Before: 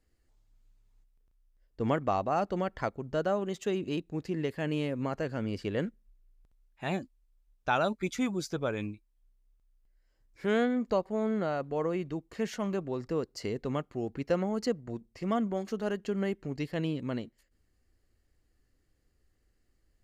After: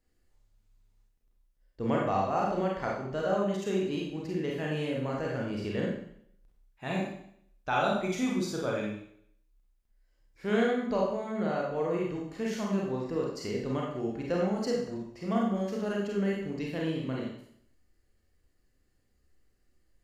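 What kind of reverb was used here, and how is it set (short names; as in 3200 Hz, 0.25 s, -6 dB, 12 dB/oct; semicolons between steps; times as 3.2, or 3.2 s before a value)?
Schroeder reverb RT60 0.66 s, combs from 31 ms, DRR -3 dB; gain -3.5 dB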